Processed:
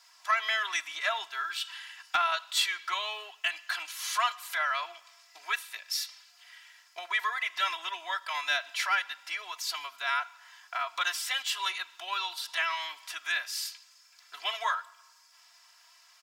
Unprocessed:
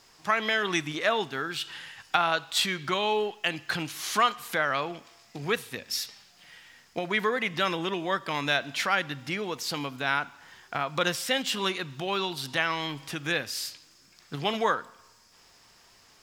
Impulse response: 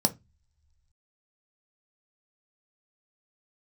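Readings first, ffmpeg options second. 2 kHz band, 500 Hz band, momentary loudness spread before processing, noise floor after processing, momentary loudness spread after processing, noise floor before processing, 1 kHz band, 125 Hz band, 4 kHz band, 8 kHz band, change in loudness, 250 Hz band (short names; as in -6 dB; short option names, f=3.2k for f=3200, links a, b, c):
-2.0 dB, -14.5 dB, 9 LU, -60 dBFS, 10 LU, -59 dBFS, -2.5 dB, under -35 dB, -1.5 dB, -1.0 dB, -2.5 dB, under -30 dB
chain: -af "highpass=f=860:w=0.5412,highpass=f=860:w=1.3066,aecho=1:1:3:0.88,asoftclip=type=tanh:threshold=-10dB,volume=-3.5dB"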